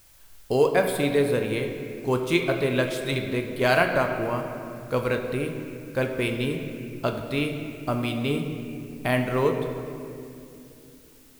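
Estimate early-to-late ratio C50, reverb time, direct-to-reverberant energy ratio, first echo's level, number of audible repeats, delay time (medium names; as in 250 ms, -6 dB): 5.5 dB, 2.8 s, 3.5 dB, no echo, no echo, no echo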